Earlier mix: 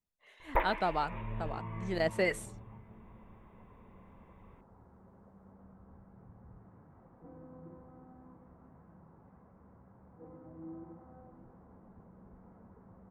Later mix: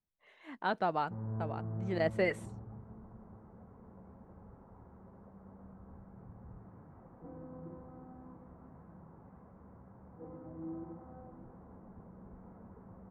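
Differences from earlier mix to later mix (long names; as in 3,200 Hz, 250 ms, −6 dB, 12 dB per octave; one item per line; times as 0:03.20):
first sound: muted
second sound +3.5 dB
master: add low-pass filter 2,300 Hz 6 dB per octave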